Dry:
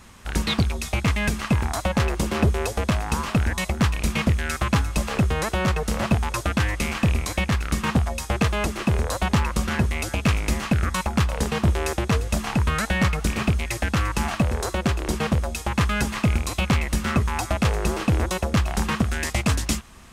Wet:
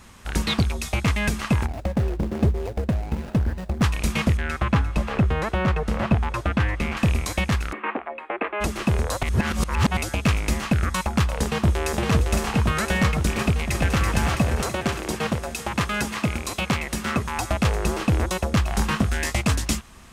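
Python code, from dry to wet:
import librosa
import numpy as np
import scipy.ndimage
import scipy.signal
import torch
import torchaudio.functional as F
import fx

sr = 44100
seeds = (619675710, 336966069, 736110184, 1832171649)

y = fx.median_filter(x, sr, points=41, at=(1.66, 3.82))
y = fx.bass_treble(y, sr, bass_db=1, treble_db=-14, at=(4.37, 6.97))
y = fx.ellip_bandpass(y, sr, low_hz=300.0, high_hz=2400.0, order=3, stop_db=40, at=(7.71, 8.6), fade=0.02)
y = fx.echo_throw(y, sr, start_s=11.42, length_s=0.52, ms=510, feedback_pct=80, wet_db=-3.5)
y = fx.echo_throw(y, sr, start_s=13.41, length_s=0.61, ms=330, feedback_pct=65, wet_db=-4.5)
y = fx.highpass(y, sr, hz=170.0, slope=6, at=(14.62, 17.38))
y = fx.doubler(y, sr, ms=20.0, db=-7.5, at=(18.69, 19.34))
y = fx.edit(y, sr, fx.reverse_span(start_s=9.23, length_s=0.74), tone=tone)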